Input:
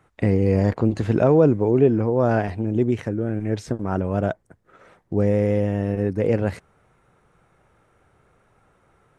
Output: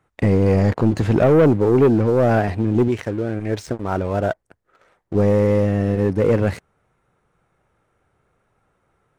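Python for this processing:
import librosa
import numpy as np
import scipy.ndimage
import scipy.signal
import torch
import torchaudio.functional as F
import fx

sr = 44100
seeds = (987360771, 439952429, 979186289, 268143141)

y = fx.peak_eq(x, sr, hz=170.0, db=-7.5, octaves=2.0, at=(2.88, 5.15))
y = fx.leveller(y, sr, passes=2)
y = y * 10.0 ** (-2.0 / 20.0)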